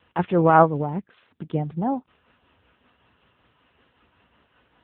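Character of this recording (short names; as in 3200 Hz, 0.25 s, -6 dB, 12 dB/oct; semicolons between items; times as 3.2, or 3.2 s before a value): tremolo triangle 5.3 Hz, depth 45%; AMR-NB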